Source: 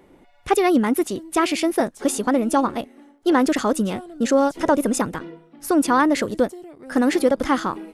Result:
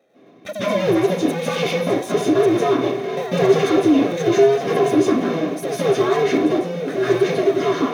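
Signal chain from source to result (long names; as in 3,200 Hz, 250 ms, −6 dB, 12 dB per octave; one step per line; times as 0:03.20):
sub-harmonics by changed cycles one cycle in 2, inverted
source passing by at 0:03.64, 12 m/s, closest 17 metres
noise gate −51 dBFS, range −40 dB
downward compressor 3 to 1, threshold −38 dBFS, peak gain reduction 18 dB
power curve on the samples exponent 0.5
high-pass filter 190 Hz 12 dB per octave
low-shelf EQ 360 Hz +4 dB
convolution reverb RT60 0.45 s, pre-delay 143 ms, DRR −10.5 dB
level −7.5 dB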